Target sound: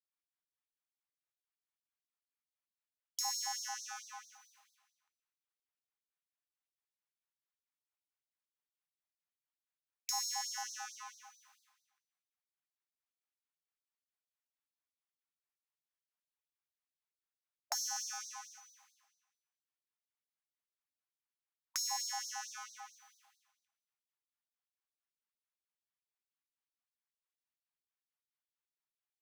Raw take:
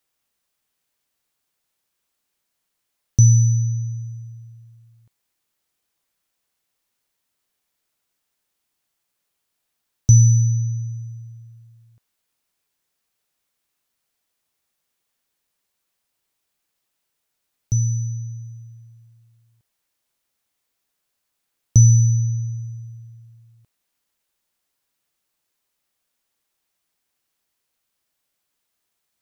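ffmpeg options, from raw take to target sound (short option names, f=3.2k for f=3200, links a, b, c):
-filter_complex "[0:a]agate=range=-33dB:threshold=-42dB:ratio=3:detection=peak,equalizer=f=140:w=1.2:g=10,acompressor=threshold=-18dB:ratio=4,asplit=2[a][b];[b]highpass=f=720:p=1,volume=27dB,asoftclip=type=tanh:threshold=-6dB[c];[a][c]amix=inputs=2:normalize=0,lowpass=f=1.1k:p=1,volume=-6dB,aeval=exprs='0.0794*(abs(mod(val(0)/0.0794+3,4)-2)-1)':c=same,aecho=1:1:244|488|732:0.126|0.0504|0.0201,afftfilt=real='re*gte(b*sr/1024,640*pow(3800/640,0.5+0.5*sin(2*PI*4.5*pts/sr)))':imag='im*gte(b*sr/1024,640*pow(3800/640,0.5+0.5*sin(2*PI*4.5*pts/sr)))':win_size=1024:overlap=0.75"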